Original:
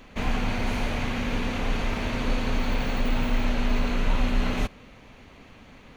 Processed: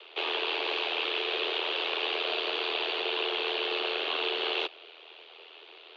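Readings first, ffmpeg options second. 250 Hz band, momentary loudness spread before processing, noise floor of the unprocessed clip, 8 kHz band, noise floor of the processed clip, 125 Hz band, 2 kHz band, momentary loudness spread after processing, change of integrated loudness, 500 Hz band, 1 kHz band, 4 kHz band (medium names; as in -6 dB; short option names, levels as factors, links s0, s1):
-14.5 dB, 2 LU, -50 dBFS, under -15 dB, -52 dBFS, under -40 dB, +1.0 dB, 20 LU, -1.0 dB, +1.0 dB, -2.0 dB, +9.0 dB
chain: -af "aeval=exprs='val(0)*sin(2*PI*41*n/s)':c=same,aexciter=amount=7.6:drive=3.5:freq=2700,highpass=f=220:t=q:w=0.5412,highpass=f=220:t=q:w=1.307,lowpass=f=3400:t=q:w=0.5176,lowpass=f=3400:t=q:w=0.7071,lowpass=f=3400:t=q:w=1.932,afreqshift=160"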